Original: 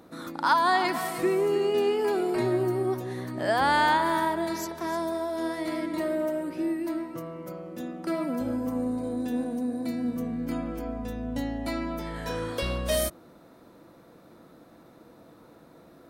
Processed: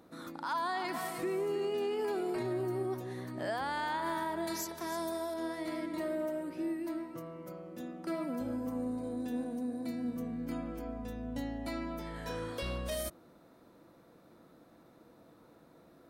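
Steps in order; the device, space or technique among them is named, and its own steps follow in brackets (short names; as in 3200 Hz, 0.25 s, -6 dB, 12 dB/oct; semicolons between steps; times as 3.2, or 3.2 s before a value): 4.47–5.34 high shelf 3800 Hz +9.5 dB; clipper into limiter (hard clip -13 dBFS, distortion -39 dB; limiter -20 dBFS, peak gain reduction 7 dB); gain -7 dB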